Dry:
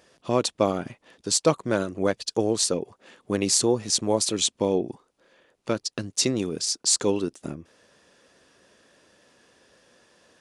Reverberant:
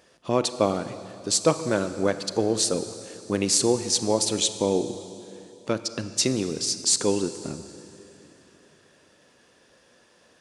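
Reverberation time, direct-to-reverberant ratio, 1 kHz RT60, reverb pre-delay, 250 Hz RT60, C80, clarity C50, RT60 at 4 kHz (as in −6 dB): 2.9 s, 11.0 dB, 2.8 s, 30 ms, 3.2 s, 12.0 dB, 11.0 dB, 2.8 s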